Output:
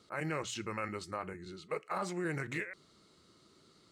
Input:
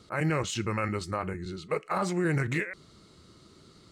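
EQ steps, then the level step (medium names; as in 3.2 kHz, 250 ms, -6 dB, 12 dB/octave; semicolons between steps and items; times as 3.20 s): bass shelf 140 Hz -11.5 dB; hum notches 60/120 Hz; -6.5 dB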